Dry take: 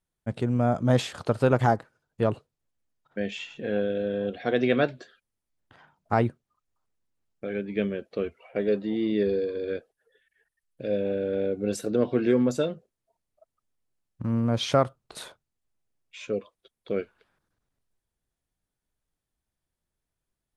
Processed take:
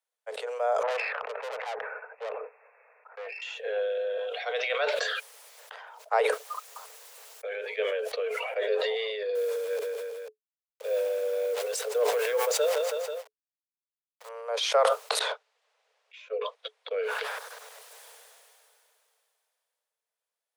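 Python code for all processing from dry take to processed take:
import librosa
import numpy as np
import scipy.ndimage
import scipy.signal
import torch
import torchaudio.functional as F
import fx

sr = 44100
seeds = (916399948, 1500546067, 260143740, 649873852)

y = fx.chain(x, sr, fx.brickwall_lowpass(high_hz=2700.0),
    fx.tube_stage(drive_db=31.0, bias=0.6), at=(0.83, 3.42))
y = fx.chain(y, sr, fx.highpass(hz=690.0, slope=12),
    fx.notch(hz=1700.0, q=9.1), at=(4.17, 4.94))
y = fx.chain(y, sr, fx.steep_highpass(hz=250.0, slope=36),
    fx.high_shelf(hz=6000.0, db=5.0), at=(6.19, 8.68))
y = fx.chain(y, sr, fx.delta_hold(step_db=-40.5),
    fx.echo_feedback(ms=163, feedback_pct=36, wet_db=-21.0), at=(9.35, 14.29))
y = fx.chain(y, sr, fx.bandpass_edges(low_hz=320.0, high_hz=4000.0),
    fx.upward_expand(threshold_db=-38.0, expansion=2.5), at=(15.19, 16.91))
y = scipy.signal.sosfilt(scipy.signal.cheby1(10, 1.0, 430.0, 'highpass', fs=sr, output='sos'), y)
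y = fx.sustainer(y, sr, db_per_s=21.0)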